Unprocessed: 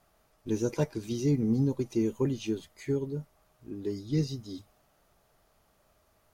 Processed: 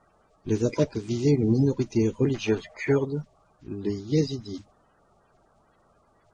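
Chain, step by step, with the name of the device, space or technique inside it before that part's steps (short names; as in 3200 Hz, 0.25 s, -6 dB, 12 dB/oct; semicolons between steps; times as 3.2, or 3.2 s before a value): clip after many re-uploads (LPF 6800 Hz 24 dB/oct; bin magnitudes rounded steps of 30 dB); 2.34–3.05 band shelf 1100 Hz +12.5 dB 2.6 oct; gain +5.5 dB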